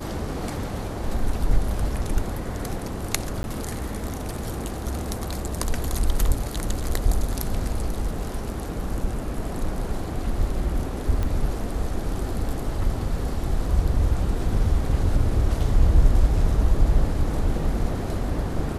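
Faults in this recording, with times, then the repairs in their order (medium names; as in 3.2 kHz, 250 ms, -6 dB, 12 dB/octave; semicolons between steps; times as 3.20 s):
3.43–3.44 s: dropout 11 ms
11.23 s: pop -15 dBFS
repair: de-click; interpolate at 3.43 s, 11 ms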